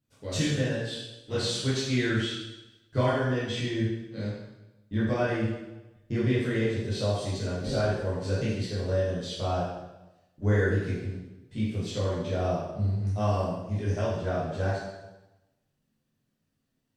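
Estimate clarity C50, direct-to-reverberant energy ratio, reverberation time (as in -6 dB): -0.5 dB, -10.0 dB, 1.0 s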